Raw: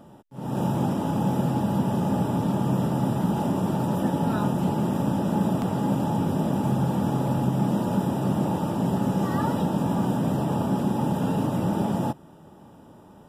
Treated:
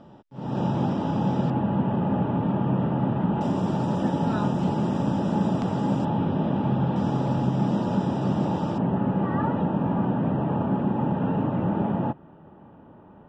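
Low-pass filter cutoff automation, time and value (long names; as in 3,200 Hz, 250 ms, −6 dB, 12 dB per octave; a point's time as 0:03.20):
low-pass filter 24 dB per octave
5,300 Hz
from 0:01.50 2,800 Hz
from 0:03.41 6,600 Hz
from 0:06.05 3,600 Hz
from 0:06.96 6,000 Hz
from 0:08.78 2,500 Hz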